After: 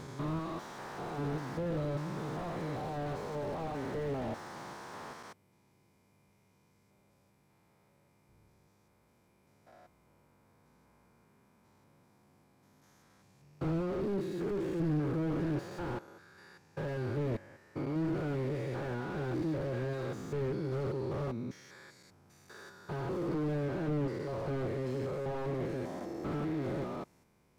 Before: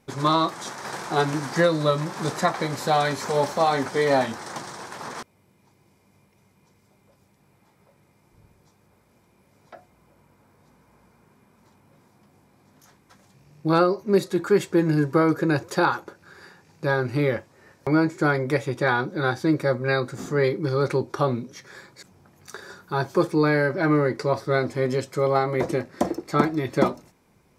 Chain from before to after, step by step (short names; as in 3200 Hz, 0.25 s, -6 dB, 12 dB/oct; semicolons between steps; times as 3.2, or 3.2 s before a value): stepped spectrum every 0.2 s; slew limiter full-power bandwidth 20 Hz; gain -6.5 dB